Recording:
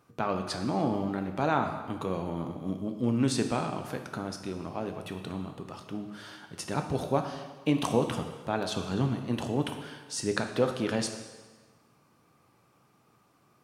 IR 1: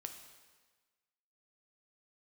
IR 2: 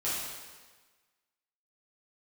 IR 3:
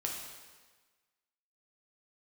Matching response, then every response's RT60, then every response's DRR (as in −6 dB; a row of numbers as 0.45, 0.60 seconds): 1; 1.4, 1.4, 1.4 seconds; 5.0, −10.0, −1.0 decibels